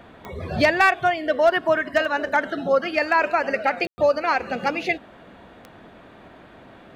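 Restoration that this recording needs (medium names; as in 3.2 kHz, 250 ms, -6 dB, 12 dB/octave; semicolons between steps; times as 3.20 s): clip repair -9 dBFS; de-click; room tone fill 3.87–3.98 s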